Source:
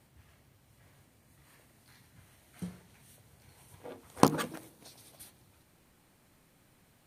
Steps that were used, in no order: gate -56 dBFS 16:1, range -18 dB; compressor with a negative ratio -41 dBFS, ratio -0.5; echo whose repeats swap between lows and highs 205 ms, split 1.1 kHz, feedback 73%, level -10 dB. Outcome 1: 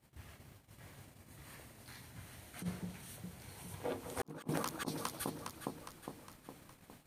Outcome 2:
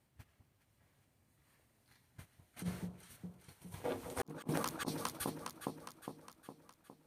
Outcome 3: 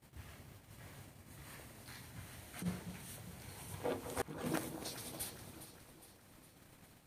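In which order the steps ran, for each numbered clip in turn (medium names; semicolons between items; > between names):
echo whose repeats swap between lows and highs > compressor with a negative ratio > gate; gate > echo whose repeats swap between lows and highs > compressor with a negative ratio; compressor with a negative ratio > gate > echo whose repeats swap between lows and highs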